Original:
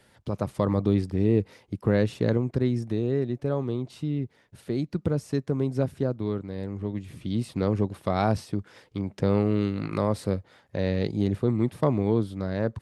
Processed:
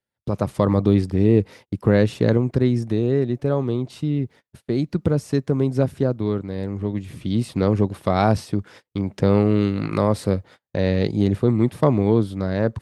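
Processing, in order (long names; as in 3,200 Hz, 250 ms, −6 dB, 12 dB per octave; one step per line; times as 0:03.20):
noise gate −47 dBFS, range −34 dB
level +6 dB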